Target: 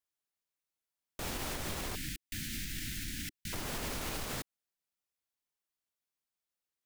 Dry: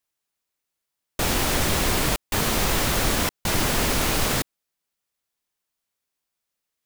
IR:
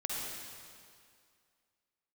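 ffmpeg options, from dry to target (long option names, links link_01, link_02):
-filter_complex "[0:a]agate=range=-10dB:threshold=-19dB:ratio=16:detection=peak,alimiter=level_in=4dB:limit=-24dB:level=0:latency=1:release=137,volume=-4dB,asettb=1/sr,asplit=3[link_01][link_02][link_03];[link_01]atrim=end=1.954[link_04];[link_02]atrim=start=1.95:end=3.53,asetpts=PTS-STARTPTS,afade=type=in:duration=0.004:curve=qsin,afade=type=out:start_time=1.576:duration=0.004:curve=qsin,asuperstop=centerf=710:order=12:qfactor=0.55[link_05];[link_03]atrim=start=3.526[link_06];[link_04][link_05]acrossfade=duration=0.004:curve1=hsin:curve2=qsin[link_07];[link_07][link_06]acrossfade=duration=0.004:curve1=qsin:curve2=hsin"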